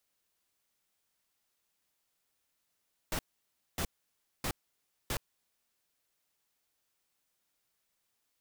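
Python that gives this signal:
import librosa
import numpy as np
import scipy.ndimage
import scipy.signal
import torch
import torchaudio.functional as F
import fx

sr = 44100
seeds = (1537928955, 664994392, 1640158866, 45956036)

y = fx.noise_burst(sr, seeds[0], colour='pink', on_s=0.07, off_s=0.59, bursts=4, level_db=-33.5)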